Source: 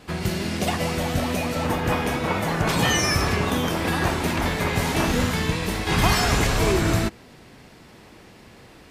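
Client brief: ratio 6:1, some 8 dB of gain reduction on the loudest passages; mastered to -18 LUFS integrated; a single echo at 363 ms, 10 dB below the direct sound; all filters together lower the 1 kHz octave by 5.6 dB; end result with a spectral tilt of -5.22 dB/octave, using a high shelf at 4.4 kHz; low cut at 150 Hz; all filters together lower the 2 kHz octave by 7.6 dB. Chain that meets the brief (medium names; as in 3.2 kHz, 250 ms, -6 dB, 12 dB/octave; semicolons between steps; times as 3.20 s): high-pass 150 Hz; peaking EQ 1 kHz -5.5 dB; peaking EQ 2 kHz -6 dB; treble shelf 4.4 kHz -9 dB; compression 6:1, threshold -29 dBFS; delay 363 ms -10 dB; trim +14.5 dB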